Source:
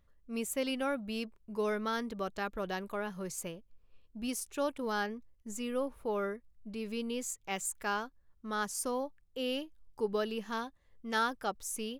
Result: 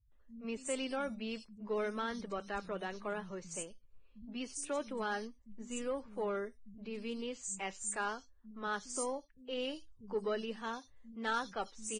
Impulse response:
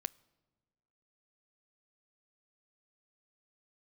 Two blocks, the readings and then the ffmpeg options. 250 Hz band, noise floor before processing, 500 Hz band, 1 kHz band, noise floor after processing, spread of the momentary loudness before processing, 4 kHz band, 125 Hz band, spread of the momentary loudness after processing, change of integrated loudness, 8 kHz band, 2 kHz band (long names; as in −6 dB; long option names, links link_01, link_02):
−4.5 dB, −67 dBFS, −3.0 dB, −3.5 dB, −63 dBFS, 11 LU, −4.0 dB, −4.5 dB, 11 LU, −3.5 dB, −2.0 dB, −3.0 dB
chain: -filter_complex "[0:a]acrossover=split=180|4700[link_01][link_02][link_03];[link_02]adelay=120[link_04];[link_03]adelay=210[link_05];[link_01][link_04][link_05]amix=inputs=3:normalize=0[link_06];[1:a]atrim=start_sample=2205,atrim=end_sample=3969[link_07];[link_06][link_07]afir=irnorm=-1:irlink=0,aeval=exprs='0.1*(cos(1*acos(clip(val(0)/0.1,-1,1)))-cos(1*PI/2))+0.00562*(cos(5*acos(clip(val(0)/0.1,-1,1)))-cos(5*PI/2))':channel_layout=same,volume=-3dB" -ar 22050 -c:a libvorbis -b:a 16k